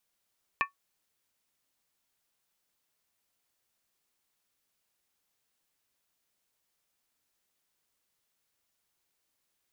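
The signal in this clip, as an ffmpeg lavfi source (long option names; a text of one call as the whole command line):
ffmpeg -f lavfi -i "aevalsrc='0.0794*pow(10,-3*t/0.13)*sin(2*PI*1120*t)+0.0631*pow(10,-3*t/0.103)*sin(2*PI*1785.3*t)+0.0501*pow(10,-3*t/0.089)*sin(2*PI*2392.3*t)+0.0398*pow(10,-3*t/0.086)*sin(2*PI*2571.5*t)':duration=0.63:sample_rate=44100" out.wav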